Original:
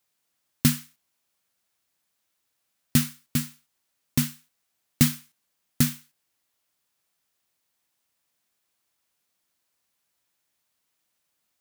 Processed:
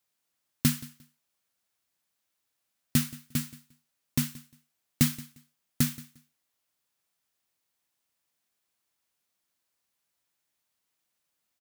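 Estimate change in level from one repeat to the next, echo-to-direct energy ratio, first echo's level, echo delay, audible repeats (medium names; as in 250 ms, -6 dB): -14.0 dB, -20.0 dB, -20.0 dB, 176 ms, 2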